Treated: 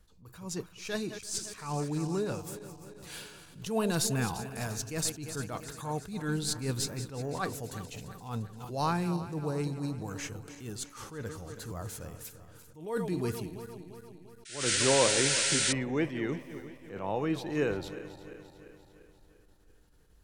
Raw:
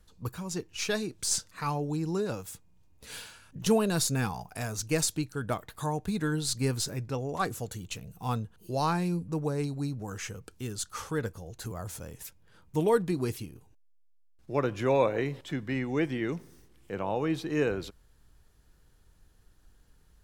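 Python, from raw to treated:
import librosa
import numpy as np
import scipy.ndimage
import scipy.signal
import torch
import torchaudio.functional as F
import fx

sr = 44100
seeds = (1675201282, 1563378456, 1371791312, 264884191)

y = fx.reverse_delay_fb(x, sr, ms=173, feedback_pct=73, wet_db=-13.0)
y = fx.spec_paint(y, sr, seeds[0], shape='noise', start_s=14.45, length_s=1.28, low_hz=1300.0, high_hz=9700.0, level_db=-27.0)
y = fx.attack_slew(y, sr, db_per_s=110.0)
y = F.gain(torch.from_numpy(y), -1.5).numpy()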